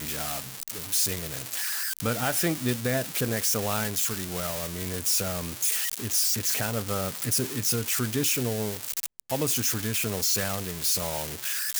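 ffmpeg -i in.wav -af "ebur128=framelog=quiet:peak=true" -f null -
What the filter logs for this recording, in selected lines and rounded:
Integrated loudness:
  I:         -26.2 LUFS
  Threshold: -36.2 LUFS
Loudness range:
  LRA:         1.5 LU
  Threshold: -46.0 LUFS
  LRA low:   -26.7 LUFS
  LRA high:  -25.1 LUFS
True peak:
  Peak:      -13.0 dBFS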